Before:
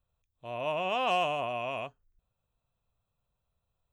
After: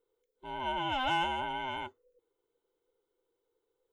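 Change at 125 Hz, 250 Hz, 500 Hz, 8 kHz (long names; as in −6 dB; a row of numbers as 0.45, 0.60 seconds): −1.5 dB, +1.5 dB, −9.5 dB, can't be measured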